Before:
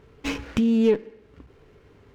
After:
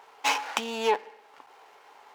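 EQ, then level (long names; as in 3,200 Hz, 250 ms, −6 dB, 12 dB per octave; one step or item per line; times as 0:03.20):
high-pass with resonance 830 Hz, resonance Q 6
high-shelf EQ 3,300 Hz +8.5 dB
+1.5 dB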